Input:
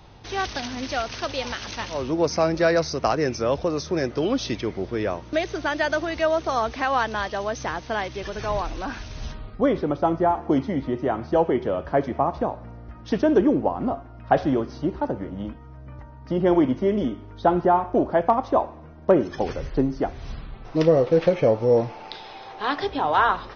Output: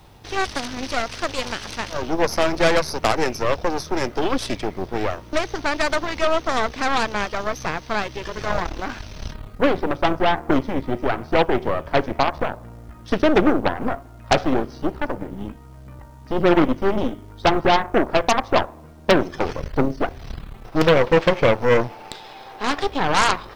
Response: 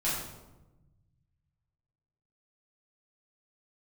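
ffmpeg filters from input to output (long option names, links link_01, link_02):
-af "acrusher=bits=9:mix=0:aa=0.000001,aeval=exprs='0.501*(cos(1*acos(clip(val(0)/0.501,-1,1)))-cos(1*PI/2))+0.178*(cos(6*acos(clip(val(0)/0.501,-1,1)))-cos(6*PI/2))+0.224*(cos(8*acos(clip(val(0)/0.501,-1,1)))-cos(8*PI/2))':channel_layout=same"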